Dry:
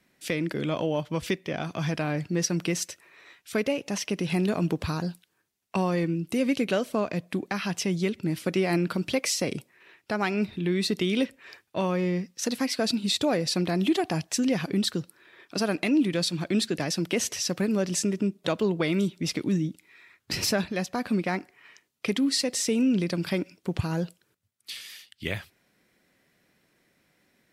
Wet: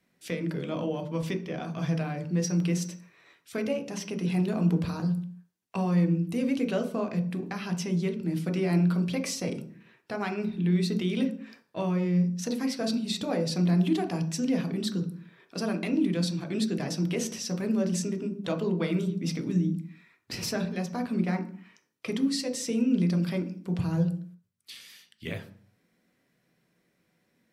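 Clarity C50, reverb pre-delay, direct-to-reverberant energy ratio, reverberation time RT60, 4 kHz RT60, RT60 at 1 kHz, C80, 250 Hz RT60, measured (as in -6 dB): 12.0 dB, 3 ms, 4.0 dB, 0.50 s, 0.45 s, 0.50 s, 16.0 dB, no reading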